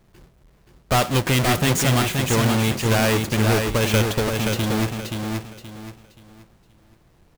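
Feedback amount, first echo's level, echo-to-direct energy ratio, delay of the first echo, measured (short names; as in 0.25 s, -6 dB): 30%, -4.5 dB, -4.0 dB, 0.526 s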